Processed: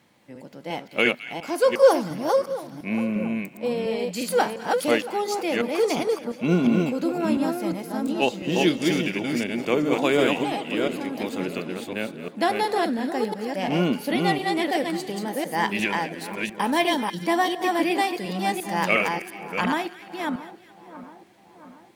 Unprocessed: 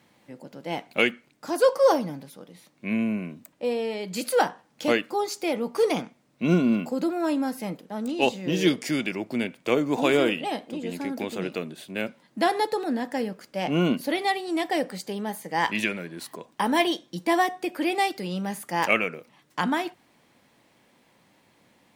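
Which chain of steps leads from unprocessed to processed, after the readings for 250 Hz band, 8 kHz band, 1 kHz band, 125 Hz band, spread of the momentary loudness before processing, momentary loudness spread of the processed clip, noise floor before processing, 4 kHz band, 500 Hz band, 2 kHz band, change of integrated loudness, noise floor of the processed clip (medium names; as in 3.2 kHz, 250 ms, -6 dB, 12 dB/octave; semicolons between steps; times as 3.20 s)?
+2.0 dB, +2.0 dB, +2.0 dB, +2.0 dB, 12 LU, 10 LU, -63 dBFS, +2.0 dB, +2.5 dB, +2.0 dB, +2.0 dB, -49 dBFS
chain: chunks repeated in reverse 351 ms, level -2.5 dB; on a send: two-band feedback delay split 1.4 kHz, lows 679 ms, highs 214 ms, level -15 dB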